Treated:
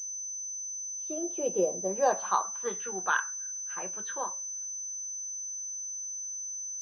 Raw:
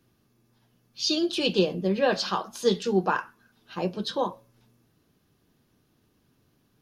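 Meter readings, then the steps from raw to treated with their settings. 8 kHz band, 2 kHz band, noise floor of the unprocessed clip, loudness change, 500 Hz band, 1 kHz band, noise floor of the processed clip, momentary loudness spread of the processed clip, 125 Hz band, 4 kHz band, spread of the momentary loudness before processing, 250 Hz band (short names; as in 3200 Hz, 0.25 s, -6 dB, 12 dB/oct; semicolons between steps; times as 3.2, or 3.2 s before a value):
+14.5 dB, -1.0 dB, -69 dBFS, -5.5 dB, -5.5 dB, -0.5 dB, -38 dBFS, 7 LU, -17.5 dB, -21.0 dB, 8 LU, -12.5 dB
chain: opening faded in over 2.13 s; band-pass sweep 580 Hz -> 1600 Hz, 1.62–2.94; pulse-width modulation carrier 6100 Hz; gain +4 dB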